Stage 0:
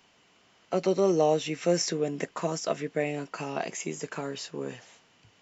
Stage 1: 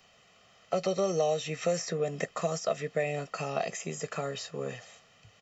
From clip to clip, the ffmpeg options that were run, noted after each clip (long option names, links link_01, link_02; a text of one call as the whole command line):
ffmpeg -i in.wav -filter_complex "[0:a]aecho=1:1:1.6:0.7,acrossover=split=850|2100[link_01][link_02][link_03];[link_01]acompressor=threshold=-27dB:ratio=4[link_04];[link_02]acompressor=threshold=-38dB:ratio=4[link_05];[link_03]acompressor=threshold=-38dB:ratio=4[link_06];[link_04][link_05][link_06]amix=inputs=3:normalize=0" out.wav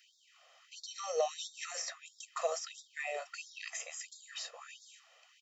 ffmpeg -i in.wav -af "afftfilt=real='re*gte(b*sr/1024,430*pow(3400/430,0.5+0.5*sin(2*PI*1.5*pts/sr)))':imag='im*gte(b*sr/1024,430*pow(3400/430,0.5+0.5*sin(2*PI*1.5*pts/sr)))':win_size=1024:overlap=0.75,volume=-2dB" out.wav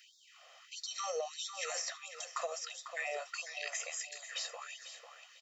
ffmpeg -i in.wav -filter_complex "[0:a]acompressor=threshold=-39dB:ratio=10,asplit=2[link_01][link_02];[link_02]adelay=497,lowpass=frequency=3300:poles=1,volume=-9dB,asplit=2[link_03][link_04];[link_04]adelay=497,lowpass=frequency=3300:poles=1,volume=0.33,asplit=2[link_05][link_06];[link_06]adelay=497,lowpass=frequency=3300:poles=1,volume=0.33,asplit=2[link_07][link_08];[link_08]adelay=497,lowpass=frequency=3300:poles=1,volume=0.33[link_09];[link_03][link_05][link_07][link_09]amix=inputs=4:normalize=0[link_10];[link_01][link_10]amix=inputs=2:normalize=0,volume=4.5dB" out.wav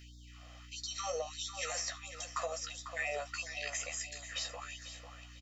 ffmpeg -i in.wav -filter_complex "[0:a]aeval=exprs='val(0)+0.002*(sin(2*PI*60*n/s)+sin(2*PI*2*60*n/s)/2+sin(2*PI*3*60*n/s)/3+sin(2*PI*4*60*n/s)/4+sin(2*PI*5*60*n/s)/5)':channel_layout=same,asplit=2[link_01][link_02];[link_02]adelay=14,volume=-7dB[link_03];[link_01][link_03]amix=inputs=2:normalize=0" out.wav